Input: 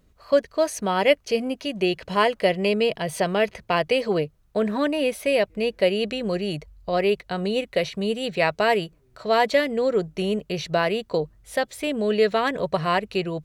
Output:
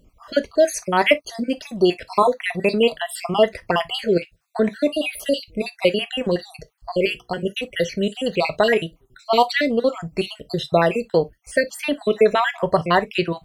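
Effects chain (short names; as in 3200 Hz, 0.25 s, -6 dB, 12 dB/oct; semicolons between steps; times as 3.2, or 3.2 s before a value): random spectral dropouts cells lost 56%; 7.05–7.45 notches 60/120/180/240/300/360/420/480 Hz; non-linear reverb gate 80 ms falling, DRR 10 dB; gain +6 dB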